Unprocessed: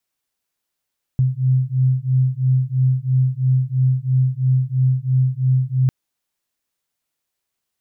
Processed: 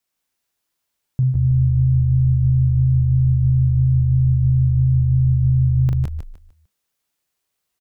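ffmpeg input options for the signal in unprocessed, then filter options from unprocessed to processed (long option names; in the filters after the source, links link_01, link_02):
-f lavfi -i "aevalsrc='0.133*(sin(2*PI*128*t)+sin(2*PI*131*t))':duration=4.7:sample_rate=44100"
-filter_complex "[0:a]asplit=2[link_01][link_02];[link_02]aecho=0:1:40|164:0.447|0.596[link_03];[link_01][link_03]amix=inputs=2:normalize=0,alimiter=limit=-12.5dB:level=0:latency=1,asplit=2[link_04][link_05];[link_05]asplit=4[link_06][link_07][link_08][link_09];[link_06]adelay=150,afreqshift=-52,volume=-7dB[link_10];[link_07]adelay=300,afreqshift=-104,volume=-17.2dB[link_11];[link_08]adelay=450,afreqshift=-156,volume=-27.3dB[link_12];[link_09]adelay=600,afreqshift=-208,volume=-37.5dB[link_13];[link_10][link_11][link_12][link_13]amix=inputs=4:normalize=0[link_14];[link_04][link_14]amix=inputs=2:normalize=0"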